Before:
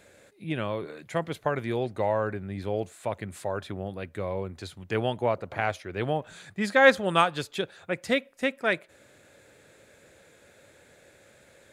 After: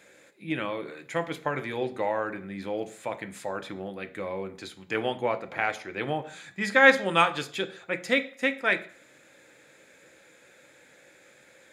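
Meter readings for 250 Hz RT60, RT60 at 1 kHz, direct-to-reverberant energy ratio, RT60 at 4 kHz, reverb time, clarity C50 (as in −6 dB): 0.45 s, 0.50 s, 8.0 dB, 0.45 s, 0.50 s, 16.0 dB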